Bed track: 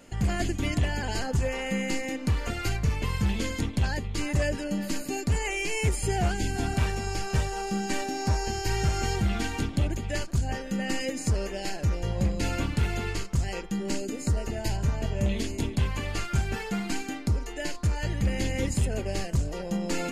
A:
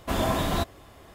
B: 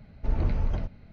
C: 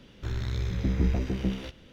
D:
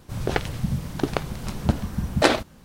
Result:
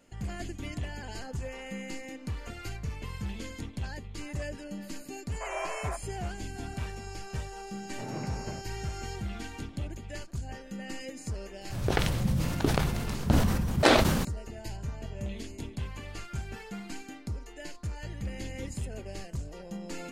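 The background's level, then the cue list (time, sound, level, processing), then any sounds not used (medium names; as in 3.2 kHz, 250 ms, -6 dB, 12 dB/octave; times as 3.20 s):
bed track -10 dB
5.33 s: add A -7.5 dB + FFT band-pass 510–2600 Hz
7.74 s: add B -3 dB + FFT band-pass 100–3100 Hz
11.61 s: add D -4.5 dB + decay stretcher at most 30 dB/s
not used: C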